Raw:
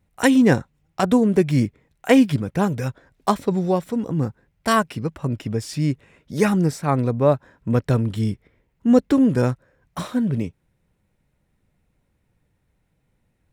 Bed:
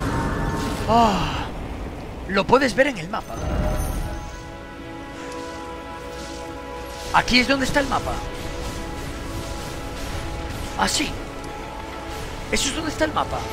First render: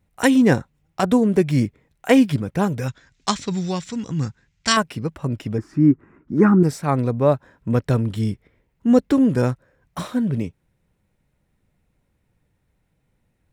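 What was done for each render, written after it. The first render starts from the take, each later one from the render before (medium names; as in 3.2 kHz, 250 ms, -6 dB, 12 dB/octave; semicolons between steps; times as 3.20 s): 2.88–4.77 s: FFT filter 150 Hz 0 dB, 560 Hz -10 dB, 2 kHz +5 dB, 7 kHz +13 dB, 12 kHz -18 dB; 5.58–6.63 s: FFT filter 130 Hz 0 dB, 340 Hz +12 dB, 510 Hz -8 dB, 1.3 kHz +7 dB, 3.5 kHz -24 dB, 6.1 kHz -19 dB, 11 kHz -25 dB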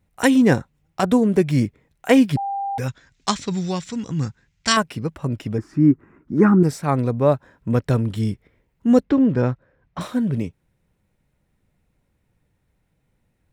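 2.37–2.78 s: bleep 794 Hz -22.5 dBFS; 9.03–10.01 s: distance through air 180 m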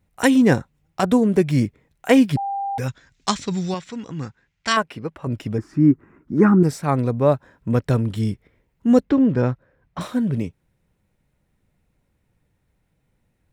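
3.74–5.27 s: tone controls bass -8 dB, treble -9 dB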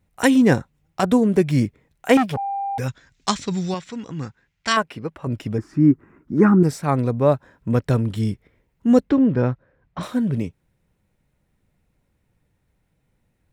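2.17–2.79 s: transformer saturation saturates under 990 Hz; 9.17–10.03 s: distance through air 88 m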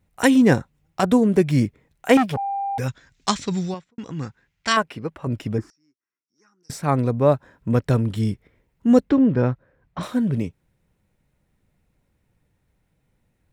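3.57–3.98 s: studio fade out; 5.70–6.70 s: band-pass filter 5.6 kHz, Q 18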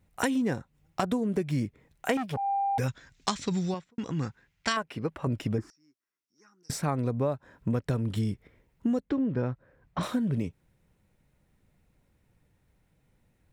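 compression 8:1, threshold -25 dBFS, peak gain reduction 16 dB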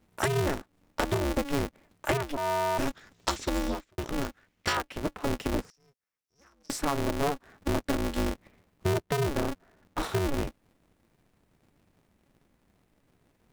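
polarity switched at an audio rate 140 Hz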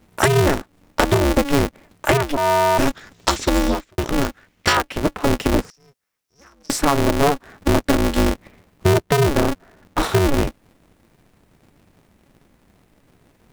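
trim +11.5 dB; peak limiter -1 dBFS, peak gain reduction 1.5 dB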